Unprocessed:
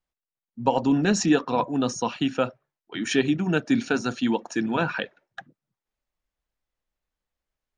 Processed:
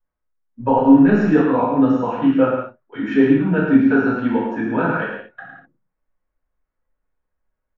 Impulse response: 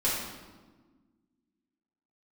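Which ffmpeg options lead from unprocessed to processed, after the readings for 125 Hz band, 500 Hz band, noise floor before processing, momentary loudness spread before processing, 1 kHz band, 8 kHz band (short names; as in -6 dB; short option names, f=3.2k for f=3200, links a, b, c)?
+6.0 dB, +7.5 dB, under -85 dBFS, 7 LU, +6.0 dB, under -20 dB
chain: -filter_complex "[0:a]lowpass=f=1.7k:t=q:w=1.6,tiltshelf=f=1.2k:g=3.5,aecho=1:1:107.9|166.2:0.562|0.251[a];[1:a]atrim=start_sample=2205,atrim=end_sample=4410[b];[a][b]afir=irnorm=-1:irlink=0,volume=-7dB"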